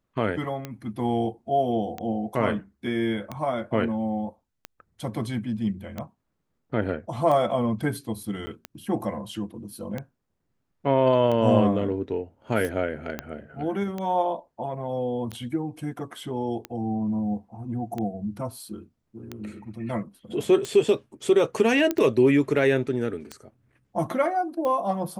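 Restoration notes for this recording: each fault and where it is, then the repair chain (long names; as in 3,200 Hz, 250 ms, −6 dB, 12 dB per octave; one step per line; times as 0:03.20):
scratch tick 45 rpm −18 dBFS
0:08.46–0:08.47: drop-out 10 ms
0:13.19: click −15 dBFS
0:21.91: click −11 dBFS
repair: click removal
repair the gap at 0:08.46, 10 ms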